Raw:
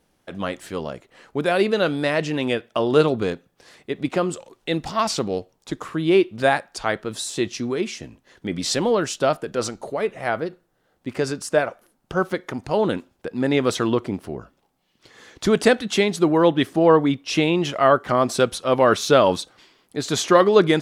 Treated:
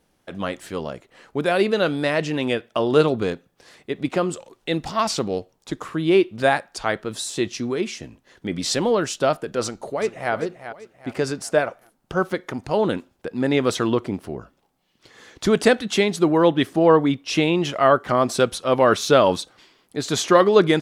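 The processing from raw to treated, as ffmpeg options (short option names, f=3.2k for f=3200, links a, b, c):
-filter_complex "[0:a]asplit=2[a][b];[b]afade=t=in:st=9.62:d=0.01,afade=t=out:st=10.33:d=0.01,aecho=0:1:390|780|1170|1560:0.281838|0.112735|0.0450941|0.0180377[c];[a][c]amix=inputs=2:normalize=0"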